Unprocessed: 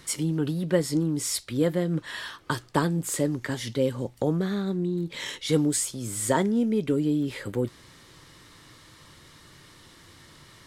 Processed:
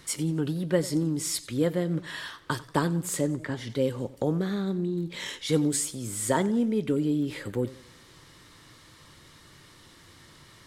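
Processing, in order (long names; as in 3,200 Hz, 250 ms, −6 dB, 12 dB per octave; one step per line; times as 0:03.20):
0:03.21–0:03.70: low-pass filter 2,400 Hz 6 dB per octave
feedback echo with a swinging delay time 91 ms, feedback 44%, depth 103 cents, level −18.5 dB
level −1.5 dB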